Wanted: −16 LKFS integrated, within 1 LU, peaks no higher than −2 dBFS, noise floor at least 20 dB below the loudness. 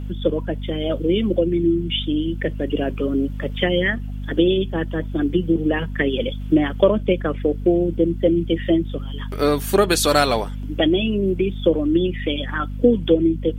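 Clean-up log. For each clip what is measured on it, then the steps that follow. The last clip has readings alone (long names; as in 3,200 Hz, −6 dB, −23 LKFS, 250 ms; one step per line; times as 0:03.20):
mains hum 50 Hz; hum harmonics up to 250 Hz; level of the hum −26 dBFS; integrated loudness −20.5 LKFS; sample peak −1.5 dBFS; target loudness −16.0 LKFS
→ hum removal 50 Hz, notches 5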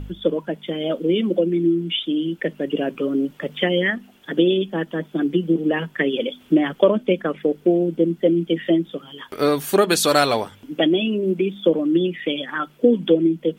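mains hum none found; integrated loudness −21.0 LKFS; sample peak −2.5 dBFS; target loudness −16.0 LKFS
→ level +5 dB
brickwall limiter −2 dBFS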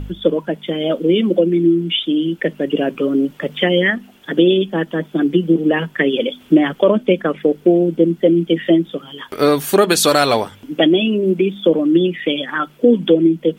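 integrated loudness −16.5 LKFS; sample peak −2.0 dBFS; background noise floor −46 dBFS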